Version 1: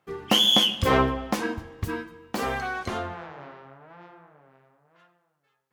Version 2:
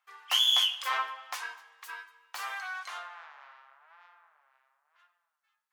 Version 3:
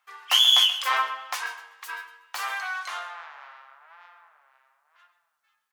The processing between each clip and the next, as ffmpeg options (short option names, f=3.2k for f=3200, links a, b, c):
-af "highpass=f=980:w=0.5412,highpass=f=980:w=1.3066,volume=-4.5dB"
-af "aecho=1:1:132:0.2,volume=6.5dB"